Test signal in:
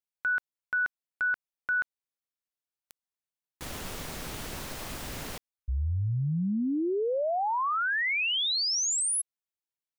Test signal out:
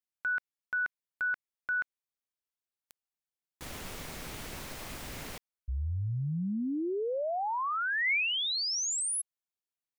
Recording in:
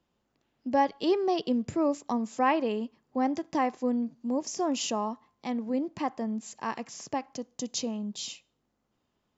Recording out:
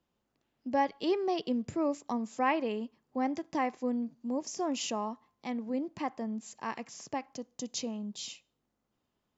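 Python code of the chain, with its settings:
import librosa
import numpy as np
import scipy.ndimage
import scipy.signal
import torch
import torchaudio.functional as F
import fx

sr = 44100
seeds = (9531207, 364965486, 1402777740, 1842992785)

y = fx.dynamic_eq(x, sr, hz=2200.0, q=3.2, threshold_db=-50.0, ratio=4.0, max_db=5)
y = F.gain(torch.from_numpy(y), -4.0).numpy()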